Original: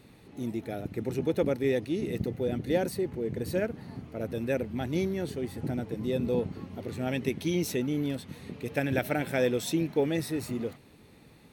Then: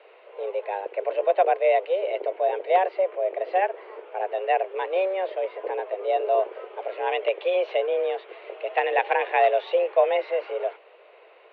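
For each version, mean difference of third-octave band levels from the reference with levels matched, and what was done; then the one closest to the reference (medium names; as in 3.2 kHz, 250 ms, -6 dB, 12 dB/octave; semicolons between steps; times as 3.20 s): 16.0 dB: in parallel at -8.5 dB: integer overflow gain 15 dB; on the sum: distance through air 68 m; mistuned SSB +190 Hz 270–3000 Hz; trim +5 dB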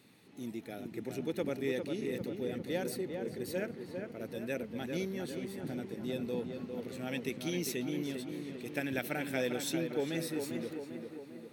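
5.0 dB: high-pass 200 Hz 12 dB/octave; peaking EQ 600 Hz -7 dB 2.6 oct; on a send: tape echo 400 ms, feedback 64%, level -4.5 dB, low-pass 1.9 kHz; on the sum: trim -2 dB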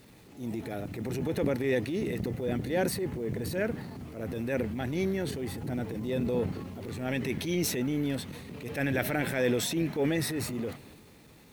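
3.5 dB: dynamic bell 1.8 kHz, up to +5 dB, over -50 dBFS, Q 2; transient shaper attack -8 dB, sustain +6 dB; bit crusher 10-bit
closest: third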